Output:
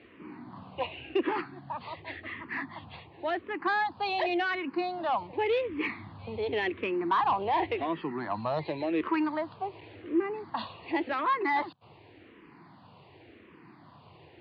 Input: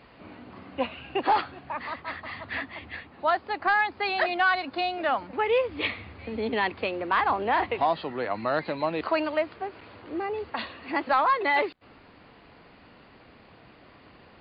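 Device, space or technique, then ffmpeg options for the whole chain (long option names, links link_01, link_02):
barber-pole phaser into a guitar amplifier: -filter_complex "[0:a]asettb=1/sr,asplit=3[link_01][link_02][link_03];[link_01]atrim=end=1.264[link_04];[link_02]atrim=start=1.26:end=2.24,asetpts=PTS-STARTPTS,afade=type=in:duration=0.004:curve=qsin,afade=type=out:start_time=0.976:duration=0.004:curve=qsin,equalizer=frequency=1000:width=1.7:gain=-5.5[link_05];[link_03]atrim=start=2.236[link_06];[link_04][link_05]acrossfade=duration=0.004:curve1=hsin:curve2=qsin[link_07];[link_07][link_06]acrossfade=duration=0.004:curve1=qsin:curve2=hsin,asplit=2[link_08][link_09];[link_09]afreqshift=-0.9[link_10];[link_08][link_10]amix=inputs=2:normalize=1,asoftclip=type=tanh:threshold=-21.5dB,highpass=97,equalizer=frequency=100:width_type=q:width=4:gain=8,equalizer=frequency=150:width_type=q:width=4:gain=7,equalizer=frequency=340:width_type=q:width=4:gain=8,equalizer=frequency=560:width_type=q:width=4:gain=-4,equalizer=frequency=980:width_type=q:width=4:gain=5,equalizer=frequency=1400:width_type=q:width=4:gain=-5,lowpass=frequency=4300:width=0.5412,lowpass=frequency=4300:width=1.3066"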